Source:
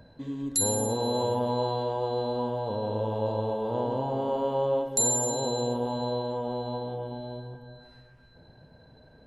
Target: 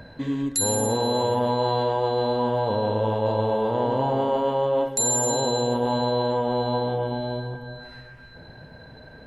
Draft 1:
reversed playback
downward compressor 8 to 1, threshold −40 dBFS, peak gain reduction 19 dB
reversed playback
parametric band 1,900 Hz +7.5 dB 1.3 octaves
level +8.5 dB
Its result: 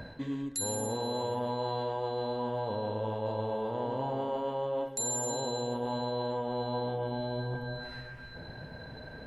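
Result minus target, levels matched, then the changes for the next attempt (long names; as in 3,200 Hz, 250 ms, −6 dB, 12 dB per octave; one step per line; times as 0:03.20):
downward compressor: peak gain reduction +10 dB
change: downward compressor 8 to 1, threshold −28.5 dBFS, peak gain reduction 9 dB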